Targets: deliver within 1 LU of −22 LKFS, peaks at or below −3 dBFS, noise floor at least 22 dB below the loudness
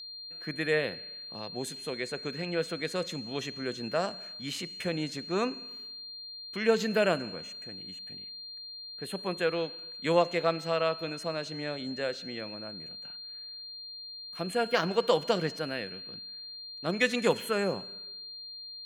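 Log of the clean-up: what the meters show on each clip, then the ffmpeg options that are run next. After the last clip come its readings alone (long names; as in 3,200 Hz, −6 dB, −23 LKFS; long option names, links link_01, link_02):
interfering tone 4,200 Hz; level of the tone −41 dBFS; integrated loudness −32.5 LKFS; sample peak −10.0 dBFS; target loudness −22.0 LKFS
→ -af "bandreject=frequency=4200:width=30"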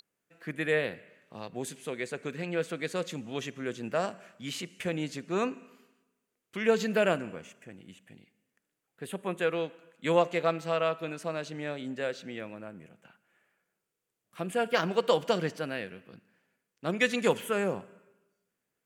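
interfering tone none found; integrated loudness −31.5 LKFS; sample peak −10.0 dBFS; target loudness −22.0 LKFS
→ -af "volume=9.5dB,alimiter=limit=-3dB:level=0:latency=1"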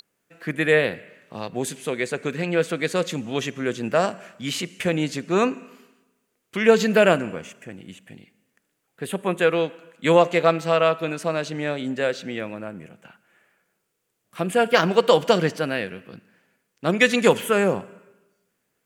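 integrated loudness −22.0 LKFS; sample peak −3.0 dBFS; background noise floor −75 dBFS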